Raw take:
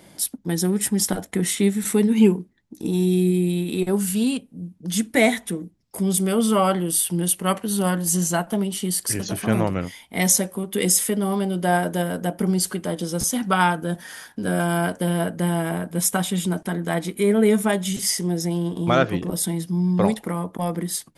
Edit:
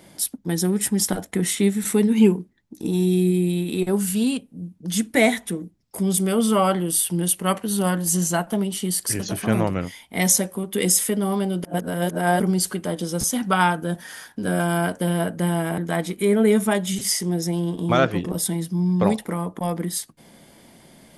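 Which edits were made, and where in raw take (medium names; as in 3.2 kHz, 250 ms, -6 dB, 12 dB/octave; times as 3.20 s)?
11.64–12.40 s: reverse
15.78–16.76 s: delete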